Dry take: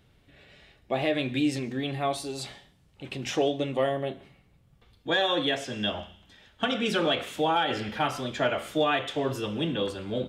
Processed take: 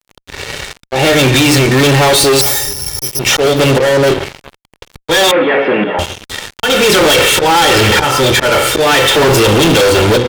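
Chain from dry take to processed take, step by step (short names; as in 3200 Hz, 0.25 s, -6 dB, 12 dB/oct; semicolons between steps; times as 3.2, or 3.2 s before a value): auto swell 0.5 s; 2.41–3.19 careless resampling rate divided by 8×, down filtered, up zero stuff; notches 60/120/180/240/300/360/420/480 Hz; comb 2.2 ms, depth 63%; in parallel at +1.5 dB: compressor, threshold -30 dBFS, peak gain reduction 9 dB; 1.34–1.81 on the sum: bell 510 Hz -6 dB 2.5 oct; on a send: echo 0.408 s -24 dB; on the sum: fuzz box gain 38 dB, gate -45 dBFS; 5.31–5.99 elliptic band-pass 190–2200 Hz, stop band 50 dB; gain +6 dB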